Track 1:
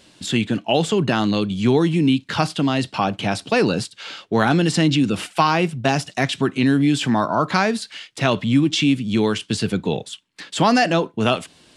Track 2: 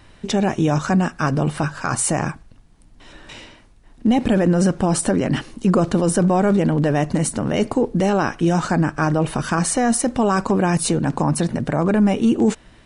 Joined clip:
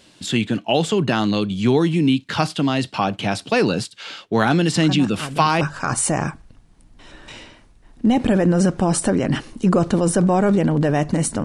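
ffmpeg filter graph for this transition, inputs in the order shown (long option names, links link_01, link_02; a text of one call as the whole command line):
ffmpeg -i cue0.wav -i cue1.wav -filter_complex "[1:a]asplit=2[link_01][link_02];[0:a]apad=whole_dur=11.44,atrim=end=11.44,atrim=end=5.612[link_03];[link_02]atrim=start=1.618:end=7.45[link_04];[link_01]atrim=start=0.77:end=1.62,asetpts=PTS-STARTPTS,volume=-10.5dB,afade=type=in:duration=0.004:curve=hsin,afade=type=out:start_time=0.846:duration=0.004:curve=hsin,adelay=4760[link_05];[link_03][link_04]acrossfade=duration=0.004:curve1=hsin:curve2=hsin[link_06];[link_06][link_05]amix=inputs=2:normalize=0" out.wav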